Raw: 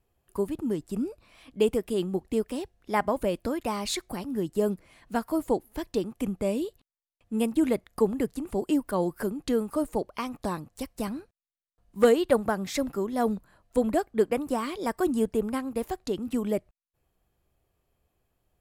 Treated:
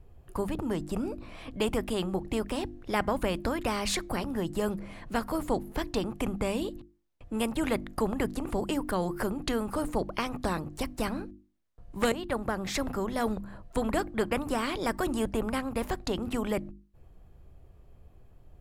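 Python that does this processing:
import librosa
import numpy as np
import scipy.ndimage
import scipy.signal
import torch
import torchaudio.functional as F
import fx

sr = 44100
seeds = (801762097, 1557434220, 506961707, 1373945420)

y = fx.edit(x, sr, fx.fade_in_from(start_s=12.12, length_s=0.88, floor_db=-14.5), tone=tone)
y = fx.tilt_eq(y, sr, slope=-3.0)
y = fx.hum_notches(y, sr, base_hz=50, count=7)
y = fx.spectral_comp(y, sr, ratio=2.0)
y = y * 10.0 ** (-6.5 / 20.0)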